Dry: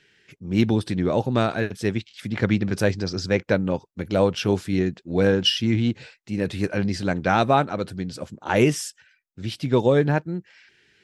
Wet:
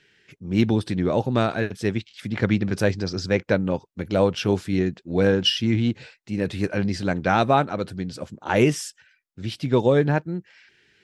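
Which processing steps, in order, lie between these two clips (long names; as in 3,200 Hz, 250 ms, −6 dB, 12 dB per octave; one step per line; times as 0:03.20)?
high-shelf EQ 8,400 Hz −4 dB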